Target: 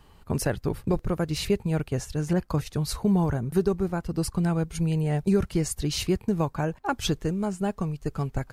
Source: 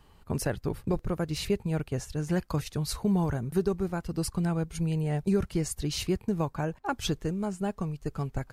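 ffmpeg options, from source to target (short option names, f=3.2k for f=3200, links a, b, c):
-filter_complex "[0:a]asettb=1/sr,asplit=3[a][b][c];[a]atrim=end=2.334[d];[b]atrim=start=2.33:end=4.45,asetpts=PTS-STARTPTS,afade=t=in:d=0.004:c=qsin,afade=t=out:st=2.116:d=0.004:c=qsin,adynamicequalizer=threshold=0.00562:dfrequency=1600:dqfactor=0.7:tfrequency=1600:tqfactor=0.7:attack=5:release=100:ratio=0.375:range=2.5:mode=cutabove:tftype=highshelf[e];[c]atrim=start=4.446[f];[d][e]acrossfade=d=0.004:c1=hsin:c2=qsin[g];[g][f]acrossfade=d=0.004:c1=qsin:c2=hsin,volume=3.5dB"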